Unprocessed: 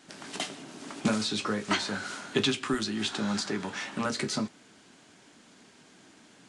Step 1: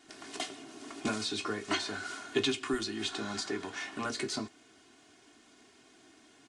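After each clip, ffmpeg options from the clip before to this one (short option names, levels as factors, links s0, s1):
-af "aecho=1:1:2.8:0.72,volume=0.531"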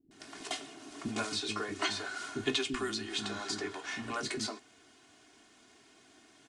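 -filter_complex "[0:a]acrossover=split=310[s0][s1];[s1]adelay=110[s2];[s0][s2]amix=inputs=2:normalize=0"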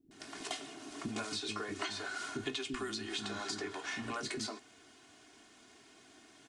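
-af "acompressor=threshold=0.0141:ratio=4,volume=1.12"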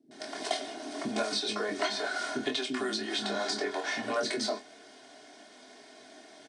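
-filter_complex "[0:a]highpass=f=170:w=0.5412,highpass=f=170:w=1.3066,equalizer=f=180:t=q:w=4:g=-8,equalizer=f=330:t=q:w=4:g=-5,equalizer=f=610:t=q:w=4:g=9,equalizer=f=1200:t=q:w=4:g=-8,equalizer=f=2700:t=q:w=4:g=-8,equalizer=f=7100:t=q:w=4:g=-9,lowpass=f=9100:w=0.5412,lowpass=f=9100:w=1.3066,asplit=2[s0][s1];[s1]adelay=24,volume=0.501[s2];[s0][s2]amix=inputs=2:normalize=0,volume=2.51"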